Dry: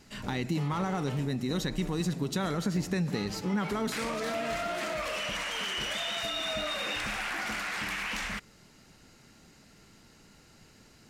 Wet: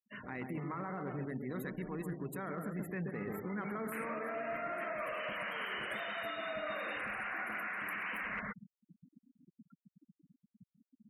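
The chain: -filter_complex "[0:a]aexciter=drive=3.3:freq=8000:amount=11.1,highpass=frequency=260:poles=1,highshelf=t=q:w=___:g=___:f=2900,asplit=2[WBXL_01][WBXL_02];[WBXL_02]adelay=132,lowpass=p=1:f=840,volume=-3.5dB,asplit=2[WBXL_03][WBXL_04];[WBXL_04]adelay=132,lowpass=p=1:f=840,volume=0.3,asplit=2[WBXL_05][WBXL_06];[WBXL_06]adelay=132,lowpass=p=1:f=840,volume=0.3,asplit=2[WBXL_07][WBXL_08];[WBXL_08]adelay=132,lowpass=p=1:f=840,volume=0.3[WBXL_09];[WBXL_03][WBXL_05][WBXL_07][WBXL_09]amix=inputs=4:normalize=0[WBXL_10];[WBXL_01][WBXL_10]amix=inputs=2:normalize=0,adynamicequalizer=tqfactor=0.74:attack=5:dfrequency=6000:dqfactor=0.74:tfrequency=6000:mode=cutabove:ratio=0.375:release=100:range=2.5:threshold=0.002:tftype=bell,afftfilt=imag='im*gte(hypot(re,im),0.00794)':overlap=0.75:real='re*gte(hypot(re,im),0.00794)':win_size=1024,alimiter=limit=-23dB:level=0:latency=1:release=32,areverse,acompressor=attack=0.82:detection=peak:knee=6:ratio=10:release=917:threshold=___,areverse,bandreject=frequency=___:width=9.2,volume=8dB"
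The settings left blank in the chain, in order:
1.5, -13, -41dB, 860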